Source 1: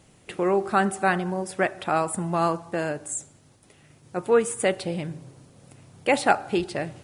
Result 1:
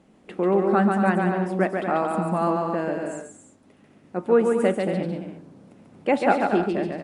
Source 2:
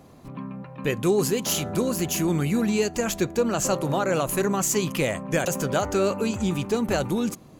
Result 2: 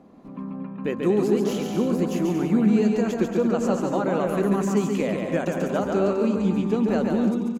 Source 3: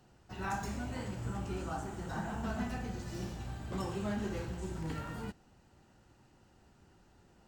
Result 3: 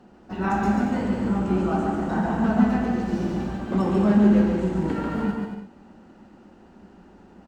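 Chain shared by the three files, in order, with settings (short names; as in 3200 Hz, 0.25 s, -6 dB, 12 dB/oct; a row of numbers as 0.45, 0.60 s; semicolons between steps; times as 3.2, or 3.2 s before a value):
LPF 1300 Hz 6 dB/oct; resonant low shelf 160 Hz -7 dB, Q 3; bouncing-ball echo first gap 0.14 s, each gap 0.65×, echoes 5; match loudness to -23 LUFS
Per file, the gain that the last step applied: +0.5, -1.5, +13.0 dB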